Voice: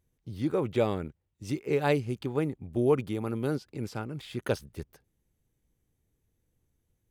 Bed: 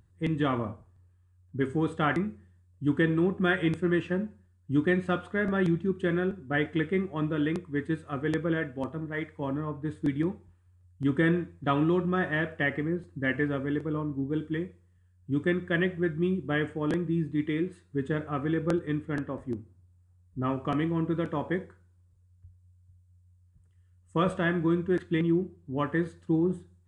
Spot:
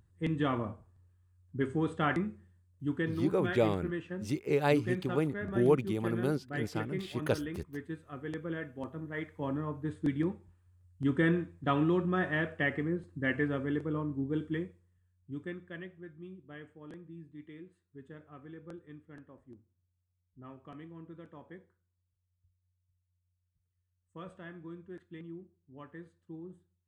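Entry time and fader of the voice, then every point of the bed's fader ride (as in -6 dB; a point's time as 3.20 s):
2.80 s, -1.5 dB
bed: 2.46 s -3.5 dB
3.29 s -10.5 dB
8.34 s -10.5 dB
9.46 s -3 dB
14.54 s -3 dB
16.00 s -20 dB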